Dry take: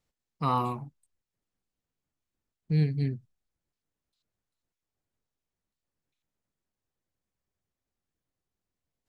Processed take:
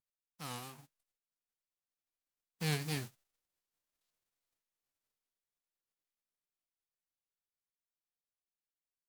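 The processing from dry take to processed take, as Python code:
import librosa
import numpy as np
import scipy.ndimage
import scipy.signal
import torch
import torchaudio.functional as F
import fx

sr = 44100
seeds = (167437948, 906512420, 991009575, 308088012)

y = fx.envelope_flatten(x, sr, power=0.3)
y = fx.doppler_pass(y, sr, speed_mps=12, closest_m=10.0, pass_at_s=4.07)
y = fx.vibrato(y, sr, rate_hz=3.2, depth_cents=92.0)
y = F.gain(torch.from_numpy(y), -4.5).numpy()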